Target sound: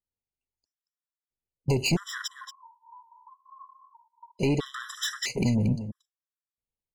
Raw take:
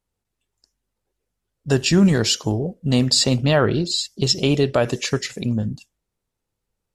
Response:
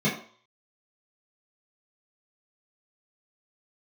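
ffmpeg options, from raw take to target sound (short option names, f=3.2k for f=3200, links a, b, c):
-filter_complex "[0:a]agate=range=-27dB:threshold=-29dB:ratio=16:detection=peak,acompressor=threshold=-26dB:ratio=6,asoftclip=type=tanh:threshold=-27.5dB,asplit=3[a][b][c];[a]afade=t=out:st=2.26:d=0.02[d];[b]asuperpass=centerf=1000:order=12:qfactor=4.8,afade=t=in:st=2.26:d=0.02,afade=t=out:st=4.39:d=0.02[e];[c]afade=t=in:st=4.39:d=0.02[f];[d][e][f]amix=inputs=3:normalize=0,aecho=1:1:230:0.299,afftfilt=real='re*gt(sin(2*PI*0.76*pts/sr)*(1-2*mod(floor(b*sr/1024/1000),2)),0)':imag='im*gt(sin(2*PI*0.76*pts/sr)*(1-2*mod(floor(b*sr/1024/1000),2)),0)':win_size=1024:overlap=0.75,volume=9dB"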